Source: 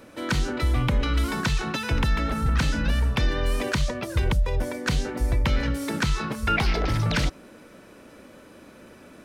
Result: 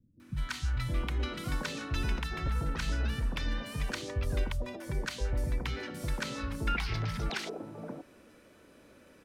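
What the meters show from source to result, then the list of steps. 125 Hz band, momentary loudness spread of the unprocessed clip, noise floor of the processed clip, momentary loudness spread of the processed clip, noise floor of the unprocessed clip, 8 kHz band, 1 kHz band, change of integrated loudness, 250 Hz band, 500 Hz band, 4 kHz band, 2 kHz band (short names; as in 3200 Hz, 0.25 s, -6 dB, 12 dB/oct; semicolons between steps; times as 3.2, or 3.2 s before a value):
-9.0 dB, 3 LU, -59 dBFS, 7 LU, -49 dBFS, -8.5 dB, -10.5 dB, -9.5 dB, -11.0 dB, -9.5 dB, -8.5 dB, -9.0 dB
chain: three bands offset in time lows, highs, mids 0.2/0.72 s, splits 200/880 Hz; gain -8.5 dB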